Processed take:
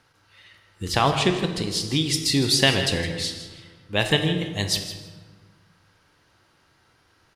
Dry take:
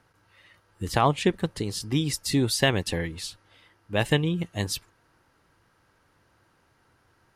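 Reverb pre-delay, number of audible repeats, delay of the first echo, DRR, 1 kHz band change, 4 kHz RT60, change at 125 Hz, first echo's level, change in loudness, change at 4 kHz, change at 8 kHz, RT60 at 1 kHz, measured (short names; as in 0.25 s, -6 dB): 18 ms, 1, 0.161 s, 5.0 dB, +2.0 dB, 0.95 s, +1.5 dB, -12.5 dB, +4.0 dB, +8.5 dB, +5.0 dB, 1.4 s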